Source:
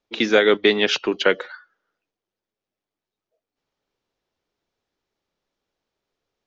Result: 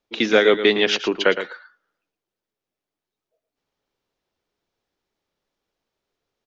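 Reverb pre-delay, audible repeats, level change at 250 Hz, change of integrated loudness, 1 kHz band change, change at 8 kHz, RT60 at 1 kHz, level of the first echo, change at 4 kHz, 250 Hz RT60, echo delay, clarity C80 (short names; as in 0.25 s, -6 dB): none, 1, 0.0 dB, +0.5 dB, +0.5 dB, n/a, none, -10.5 dB, +0.5 dB, none, 0.113 s, none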